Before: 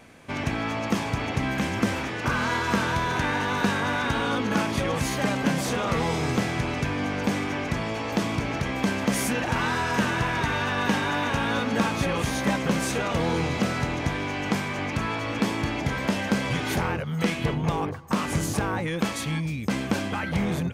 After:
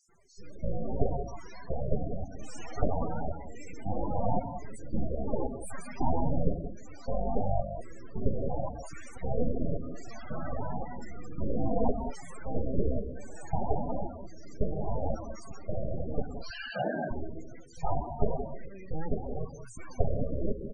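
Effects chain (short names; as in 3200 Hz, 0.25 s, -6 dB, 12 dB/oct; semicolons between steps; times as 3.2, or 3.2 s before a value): bell 220 Hz +7 dB 0.66 oct; in parallel at 0 dB: limiter -16 dBFS, peak gain reduction 8.5 dB; on the sum: LFO band-pass square 0.93 Hz 410–4400 Hz; full-wave rectifier; companded quantiser 4-bit; 16.41–17.02 speaker cabinet 170–6100 Hz, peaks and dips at 980 Hz -4 dB, 1600 Hz +9 dB, 2900 Hz +10 dB, 4400 Hz +8 dB; rotary speaker horn 0.65 Hz; bands offset in time highs, lows 90 ms, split 3700 Hz; non-linear reverb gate 0.22 s rising, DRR 7 dB; loudest bins only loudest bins 16; gain +4 dB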